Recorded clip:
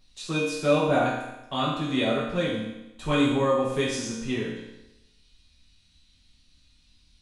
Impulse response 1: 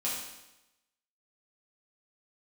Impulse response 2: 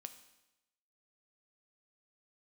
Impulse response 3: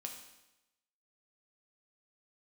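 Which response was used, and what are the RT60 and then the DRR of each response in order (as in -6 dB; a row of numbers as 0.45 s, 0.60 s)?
1; 0.95 s, 0.95 s, 0.95 s; -7.5 dB, 8.5 dB, 2.0 dB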